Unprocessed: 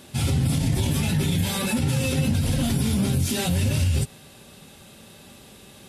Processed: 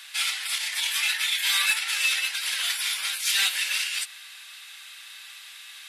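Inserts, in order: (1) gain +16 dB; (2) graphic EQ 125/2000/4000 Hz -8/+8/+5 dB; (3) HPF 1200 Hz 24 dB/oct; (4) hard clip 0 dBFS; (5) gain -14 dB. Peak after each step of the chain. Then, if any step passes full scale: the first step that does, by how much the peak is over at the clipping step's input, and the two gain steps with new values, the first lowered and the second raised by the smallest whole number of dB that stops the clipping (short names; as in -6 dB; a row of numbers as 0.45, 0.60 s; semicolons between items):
+3.0, +4.5, +5.0, 0.0, -14.0 dBFS; step 1, 5.0 dB; step 1 +11 dB, step 5 -9 dB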